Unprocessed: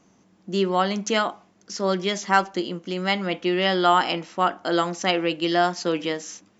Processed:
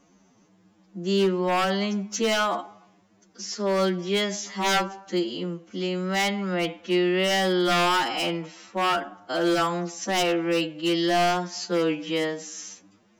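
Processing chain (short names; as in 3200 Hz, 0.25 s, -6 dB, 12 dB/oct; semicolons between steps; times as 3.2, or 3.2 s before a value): wavefolder -15 dBFS; time stretch by phase-locked vocoder 2×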